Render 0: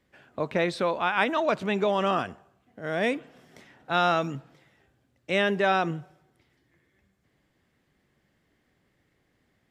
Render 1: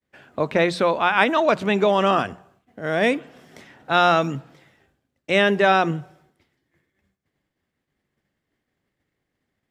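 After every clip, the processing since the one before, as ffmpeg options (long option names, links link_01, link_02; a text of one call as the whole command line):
ffmpeg -i in.wav -af "agate=range=-33dB:threshold=-60dB:ratio=3:detection=peak,bandreject=frequency=60:width_type=h:width=6,bandreject=frequency=120:width_type=h:width=6,bandreject=frequency=180:width_type=h:width=6,volume=6.5dB" out.wav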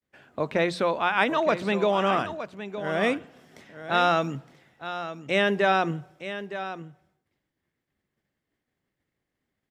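ffmpeg -i in.wav -af "aecho=1:1:914:0.266,volume=-5dB" out.wav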